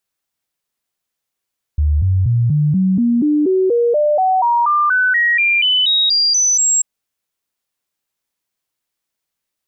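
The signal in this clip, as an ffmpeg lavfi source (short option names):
-f lavfi -i "aevalsrc='0.282*clip(min(mod(t,0.24),0.24-mod(t,0.24))/0.005,0,1)*sin(2*PI*74.6*pow(2,floor(t/0.24)/3)*mod(t,0.24))':d=5.04:s=44100"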